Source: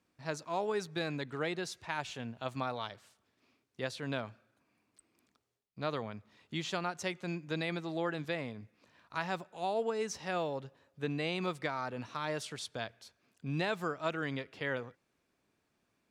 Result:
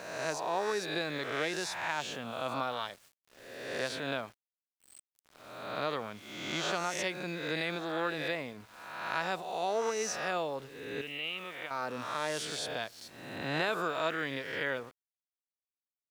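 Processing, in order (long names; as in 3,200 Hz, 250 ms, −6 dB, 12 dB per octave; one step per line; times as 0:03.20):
peak hold with a rise ahead of every peak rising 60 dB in 1.04 s
low-shelf EQ 150 Hz −12 dB
in parallel at −3 dB: downward compressor 6 to 1, threshold −49 dBFS, peak gain reduction 20.5 dB
0:11.01–0:11.71: on the sum: transistor ladder low-pass 3,100 Hz, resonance 75%
centre clipping without the shift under −52.5 dBFS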